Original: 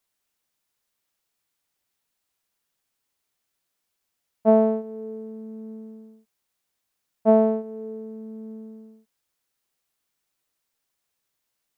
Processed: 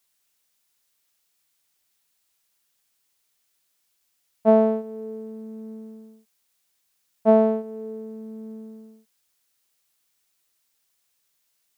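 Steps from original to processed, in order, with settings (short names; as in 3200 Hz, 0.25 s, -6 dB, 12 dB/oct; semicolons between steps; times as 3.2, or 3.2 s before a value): high shelf 2000 Hz +8.5 dB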